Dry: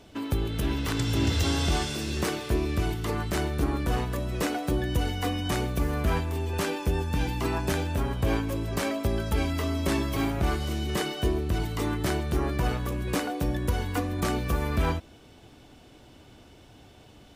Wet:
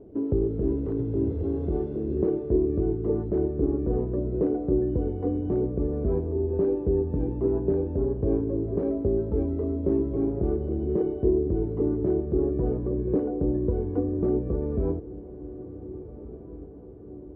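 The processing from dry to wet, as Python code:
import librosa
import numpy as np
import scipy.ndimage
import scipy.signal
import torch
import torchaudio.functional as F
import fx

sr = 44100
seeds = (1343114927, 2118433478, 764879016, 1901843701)

p1 = fx.rider(x, sr, range_db=10, speed_s=0.5)
p2 = fx.lowpass_res(p1, sr, hz=410.0, q=3.6)
p3 = p2 + fx.echo_diffused(p2, sr, ms=1630, feedback_pct=54, wet_db=-15.5, dry=0)
y = p3 * librosa.db_to_amplitude(-2.0)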